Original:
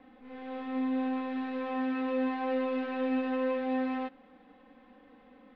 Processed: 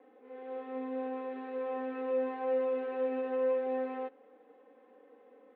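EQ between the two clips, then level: resonant high-pass 420 Hz, resonance Q 4.9; air absorption 330 m; -5.0 dB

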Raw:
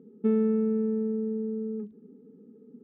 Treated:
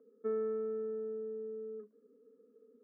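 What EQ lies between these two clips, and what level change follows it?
HPF 410 Hz 24 dB/oct; LPF 1800 Hz 12 dB/oct; fixed phaser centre 550 Hz, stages 8; 0.0 dB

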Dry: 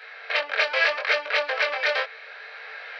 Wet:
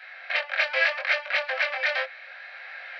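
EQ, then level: rippled Chebyshev high-pass 510 Hz, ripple 6 dB; 0.0 dB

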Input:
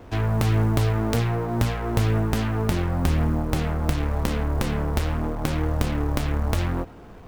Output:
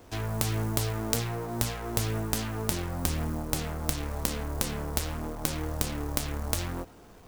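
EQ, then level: tone controls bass -3 dB, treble +13 dB; -7.0 dB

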